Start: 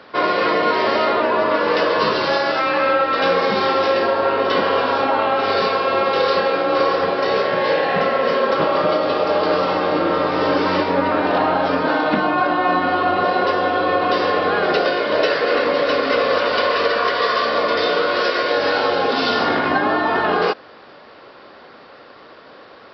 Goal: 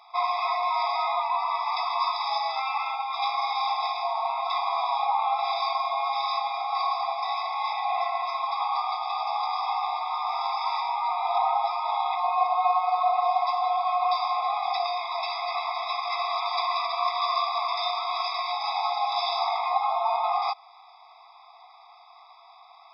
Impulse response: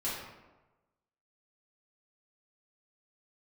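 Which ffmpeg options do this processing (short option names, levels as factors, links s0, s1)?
-af "equalizer=f=1900:t=o:w=1.7:g=-9,afftfilt=real='re*eq(mod(floor(b*sr/1024/660),2),1)':imag='im*eq(mod(floor(b*sr/1024/660),2),1)':win_size=1024:overlap=0.75"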